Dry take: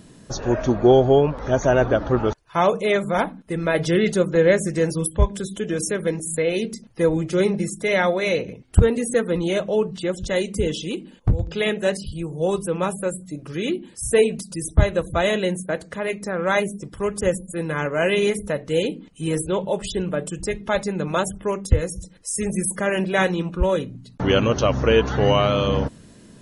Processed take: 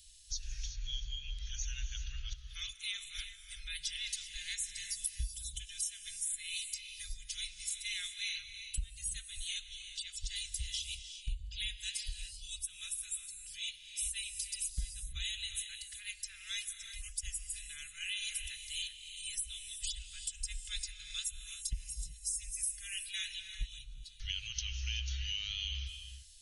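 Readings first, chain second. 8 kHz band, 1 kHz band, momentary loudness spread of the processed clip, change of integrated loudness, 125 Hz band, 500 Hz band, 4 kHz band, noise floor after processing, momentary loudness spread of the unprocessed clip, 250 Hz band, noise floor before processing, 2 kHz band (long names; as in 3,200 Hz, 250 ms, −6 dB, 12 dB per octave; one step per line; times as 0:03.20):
−5.5 dB, below −40 dB, 7 LU, −17.5 dB, −23.5 dB, below −40 dB, −6.0 dB, −53 dBFS, 10 LU, below −40 dB, −48 dBFS, −18.0 dB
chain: inverse Chebyshev band-stop filter 190–870 Hz, stop band 70 dB
downward compressor, threshold −33 dBFS, peak gain reduction 17 dB
reverb whose tail is shaped and stops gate 410 ms rising, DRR 7 dB
level −1.5 dB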